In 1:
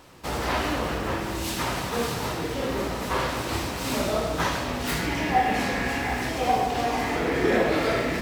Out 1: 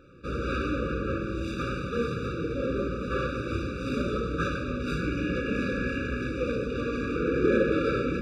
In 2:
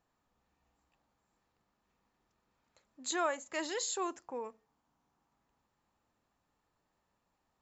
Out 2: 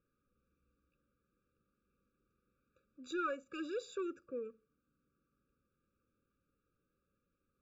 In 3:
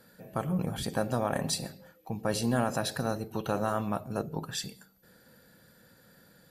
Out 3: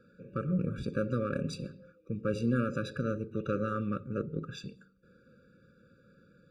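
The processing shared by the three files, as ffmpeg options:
ffmpeg -i in.wav -af "adynamicsmooth=sensitivity=1:basefreq=2600,afftfilt=real='re*eq(mod(floor(b*sr/1024/570),2),0)':imag='im*eq(mod(floor(b*sr/1024/570),2),0)':win_size=1024:overlap=0.75" out.wav

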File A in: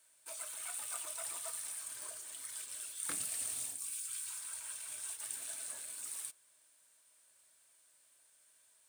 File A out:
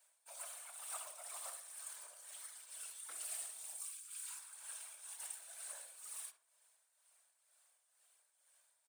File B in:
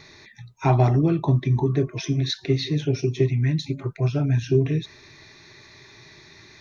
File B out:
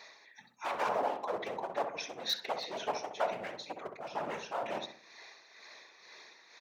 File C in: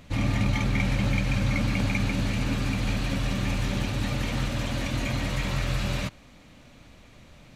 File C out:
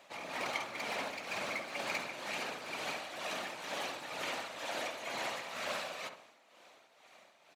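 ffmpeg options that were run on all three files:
ffmpeg -i in.wav -filter_complex "[0:a]aeval=exprs='0.112*(abs(mod(val(0)/0.112+3,4)-2)-1)':channel_layout=same,afftfilt=real='hypot(re,im)*cos(2*PI*random(0))':imag='hypot(re,im)*sin(2*PI*random(1))':win_size=512:overlap=0.75,highpass=frequency=680:width_type=q:width=1.5,tremolo=f=2.1:d=0.6,asplit=2[link_01][link_02];[link_02]adelay=65,lowpass=frequency=1400:poles=1,volume=-6dB,asplit=2[link_03][link_04];[link_04]adelay=65,lowpass=frequency=1400:poles=1,volume=0.44,asplit=2[link_05][link_06];[link_06]adelay=65,lowpass=frequency=1400:poles=1,volume=0.44,asplit=2[link_07][link_08];[link_08]adelay=65,lowpass=frequency=1400:poles=1,volume=0.44,asplit=2[link_09][link_10];[link_10]adelay=65,lowpass=frequency=1400:poles=1,volume=0.44[link_11];[link_03][link_05][link_07][link_09][link_11]amix=inputs=5:normalize=0[link_12];[link_01][link_12]amix=inputs=2:normalize=0,volume=2dB" out.wav

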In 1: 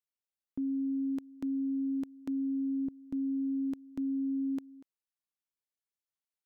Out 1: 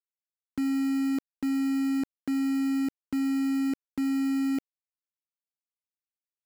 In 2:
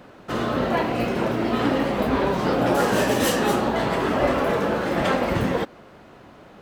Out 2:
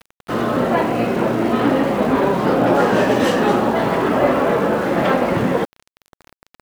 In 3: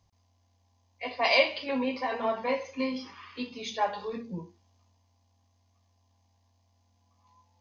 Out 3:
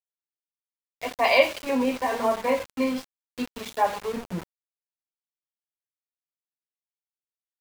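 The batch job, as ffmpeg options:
ffmpeg -i in.wav -filter_complex "[0:a]aemphasis=mode=reproduction:type=75fm,acrossover=split=110|1200[link_01][link_02][link_03];[link_01]acompressor=threshold=-48dB:ratio=6[link_04];[link_04][link_02][link_03]amix=inputs=3:normalize=0,aeval=exprs='val(0)*gte(abs(val(0)),0.0133)':channel_layout=same,volume=5dB" out.wav

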